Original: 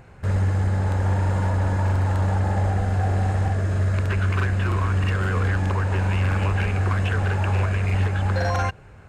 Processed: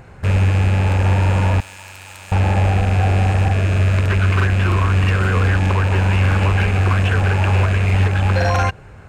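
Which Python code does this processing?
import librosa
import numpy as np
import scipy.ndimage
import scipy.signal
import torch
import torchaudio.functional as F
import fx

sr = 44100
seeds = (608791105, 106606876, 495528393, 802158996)

y = fx.rattle_buzz(x, sr, strikes_db=-21.0, level_db=-24.0)
y = fx.pre_emphasis(y, sr, coefficient=0.97, at=(1.6, 2.32))
y = y * librosa.db_to_amplitude(6.0)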